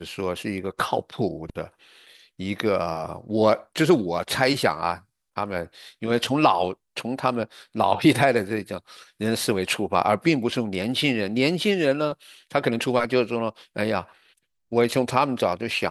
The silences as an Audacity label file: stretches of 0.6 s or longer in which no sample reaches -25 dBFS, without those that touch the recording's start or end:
1.640000	2.400000	silence
14.010000	14.730000	silence